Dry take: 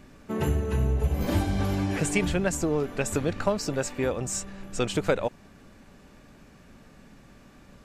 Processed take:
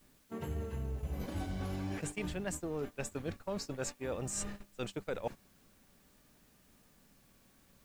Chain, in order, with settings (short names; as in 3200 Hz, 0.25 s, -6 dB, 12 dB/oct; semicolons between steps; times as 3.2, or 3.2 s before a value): reverse; compressor 8:1, threshold -38 dBFS, peak gain reduction 19.5 dB; reverse; gate -42 dBFS, range -18 dB; vibrato 0.5 Hz 62 cents; requantised 12-bit, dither triangular; gain +2.5 dB